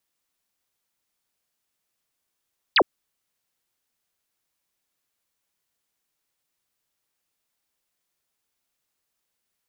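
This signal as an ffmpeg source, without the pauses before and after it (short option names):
-f lavfi -i "aevalsrc='0.224*clip(t/0.002,0,1)*clip((0.06-t)/0.002,0,1)*sin(2*PI*5100*0.06/log(270/5100)*(exp(log(270/5100)*t/0.06)-1))':d=0.06:s=44100"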